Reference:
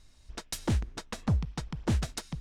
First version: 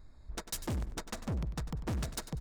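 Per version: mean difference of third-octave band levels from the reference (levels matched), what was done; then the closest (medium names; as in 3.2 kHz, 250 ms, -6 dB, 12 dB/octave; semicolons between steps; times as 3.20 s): 6.5 dB: local Wiener filter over 15 samples; treble shelf 8.3 kHz +8 dB; saturation -36 dBFS, distortion -5 dB; feedback delay 97 ms, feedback 31%, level -13 dB; trim +4 dB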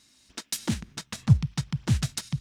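4.5 dB: bass shelf 160 Hz +9.5 dB; high-pass sweep 260 Hz -> 130 Hz, 0.47–1.16 s; in parallel at +2 dB: level held to a coarse grid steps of 14 dB; on the sum: amplifier tone stack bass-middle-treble 5-5-5; trim +9 dB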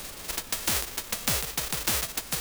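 13.0 dB: formants flattened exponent 0.1; compression 3:1, threshold -31 dBFS, peak gain reduction 8 dB; added noise pink -56 dBFS; three bands compressed up and down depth 40%; trim +6.5 dB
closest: second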